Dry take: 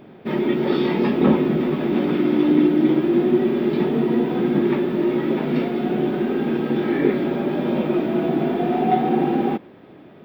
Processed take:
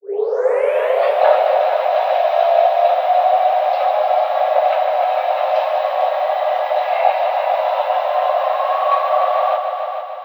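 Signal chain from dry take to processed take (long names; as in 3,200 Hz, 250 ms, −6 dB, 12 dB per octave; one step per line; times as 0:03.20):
turntable start at the beginning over 1.24 s
frequency shifter +380 Hz
echo machine with several playback heads 149 ms, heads all three, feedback 52%, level −11 dB
level +2.5 dB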